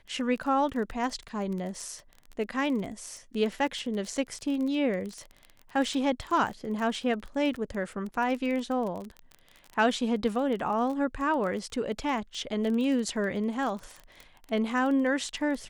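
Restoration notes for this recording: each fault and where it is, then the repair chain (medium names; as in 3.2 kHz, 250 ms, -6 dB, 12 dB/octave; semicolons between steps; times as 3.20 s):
crackle 22 per s -33 dBFS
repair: de-click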